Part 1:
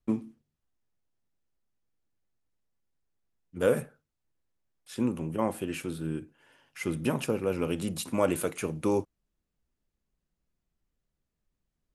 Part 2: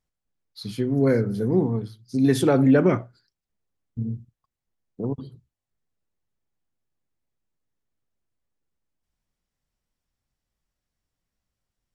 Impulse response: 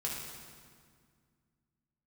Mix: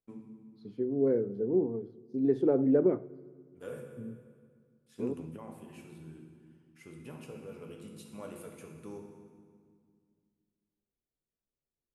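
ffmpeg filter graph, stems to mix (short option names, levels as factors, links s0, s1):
-filter_complex "[0:a]volume=0.224,asplit=2[s0][s1];[s1]volume=0.335[s2];[1:a]bandpass=f=390:t=q:w=2.1:csg=0,volume=0.631,asplit=3[s3][s4][s5];[s4]volume=0.0891[s6];[s5]apad=whole_len=526934[s7];[s0][s7]sidechaingate=range=0.2:threshold=0.00112:ratio=16:detection=peak[s8];[2:a]atrim=start_sample=2205[s9];[s2][s6]amix=inputs=2:normalize=0[s10];[s10][s9]afir=irnorm=-1:irlink=0[s11];[s8][s3][s11]amix=inputs=3:normalize=0"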